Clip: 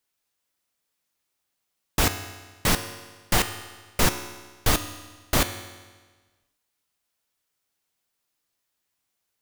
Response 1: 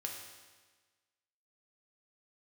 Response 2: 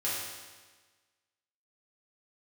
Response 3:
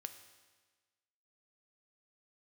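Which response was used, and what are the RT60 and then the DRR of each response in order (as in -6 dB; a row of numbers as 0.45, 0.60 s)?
3; 1.4, 1.4, 1.4 s; 0.0, -8.5, 8.0 dB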